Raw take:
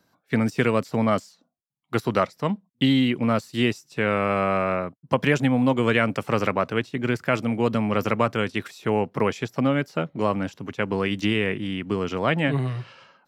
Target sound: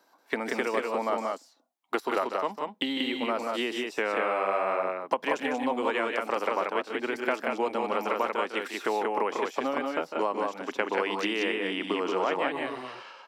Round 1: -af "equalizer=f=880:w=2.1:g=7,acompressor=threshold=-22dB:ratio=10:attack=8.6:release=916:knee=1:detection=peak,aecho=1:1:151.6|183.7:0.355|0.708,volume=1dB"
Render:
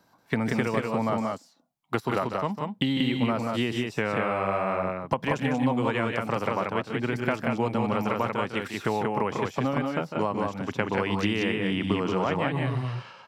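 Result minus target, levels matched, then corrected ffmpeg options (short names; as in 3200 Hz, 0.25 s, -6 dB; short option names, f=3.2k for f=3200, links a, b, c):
250 Hz band +4.5 dB
-af "equalizer=f=880:w=2.1:g=7,acompressor=threshold=-22dB:ratio=10:attack=8.6:release=916:knee=1:detection=peak,highpass=f=300:w=0.5412,highpass=f=300:w=1.3066,aecho=1:1:151.6|183.7:0.355|0.708,volume=1dB"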